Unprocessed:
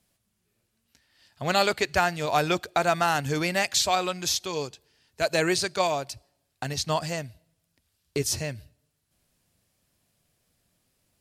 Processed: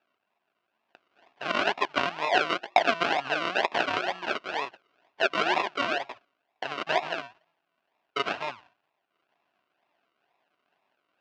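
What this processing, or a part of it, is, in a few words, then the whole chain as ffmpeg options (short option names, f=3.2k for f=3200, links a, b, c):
circuit-bent sampling toy: -af "acrusher=samples=41:mix=1:aa=0.000001:lfo=1:lforange=24.6:lforate=2.1,highpass=490,equalizer=f=490:t=q:w=4:g=-7,equalizer=f=700:t=q:w=4:g=6,equalizer=f=1k:t=q:w=4:g=6,equalizer=f=1.5k:t=q:w=4:g=7,equalizer=f=2.7k:t=q:w=4:g=10,lowpass=f=4.9k:w=0.5412,lowpass=f=4.9k:w=1.3066"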